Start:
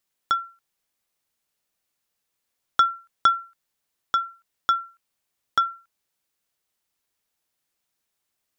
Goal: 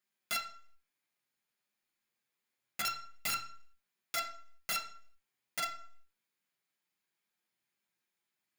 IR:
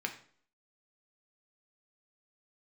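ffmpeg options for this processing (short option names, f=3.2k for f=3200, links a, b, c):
-filter_complex "[0:a]flanger=delay=4.9:depth=3.9:regen=-46:speed=0.26:shape=triangular,aeval=exprs='0.316*(cos(1*acos(clip(val(0)/0.316,-1,1)))-cos(1*PI/2))+0.1*(cos(6*acos(clip(val(0)/0.316,-1,1)))-cos(6*PI/2))+0.00316*(cos(8*acos(clip(val(0)/0.316,-1,1)))-cos(8*PI/2))':c=same,aeval=exprs='(mod(12.6*val(0)+1,2)-1)/12.6':c=same[a];[1:a]atrim=start_sample=2205,afade=t=out:st=0.44:d=0.01,atrim=end_sample=19845[b];[a][b]afir=irnorm=-1:irlink=0,volume=-3dB"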